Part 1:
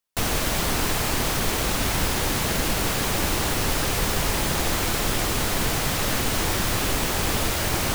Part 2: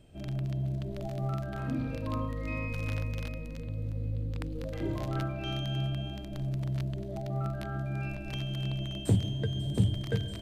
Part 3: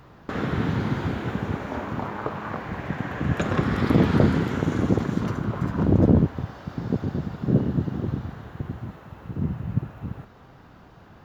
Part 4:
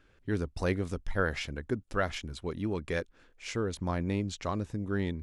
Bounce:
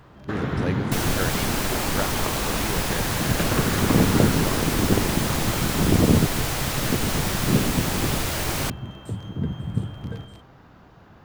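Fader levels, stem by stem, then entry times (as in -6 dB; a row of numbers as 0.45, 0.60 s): -2.0, -6.5, -0.5, 0.0 dB; 0.75, 0.00, 0.00, 0.00 s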